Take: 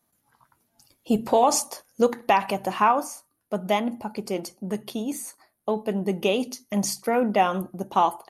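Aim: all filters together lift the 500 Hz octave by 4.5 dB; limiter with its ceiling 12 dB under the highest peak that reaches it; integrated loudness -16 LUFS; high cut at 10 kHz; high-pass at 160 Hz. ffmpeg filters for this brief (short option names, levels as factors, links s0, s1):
-af "highpass=160,lowpass=10000,equalizer=f=500:t=o:g=5.5,volume=3.98,alimiter=limit=0.631:level=0:latency=1"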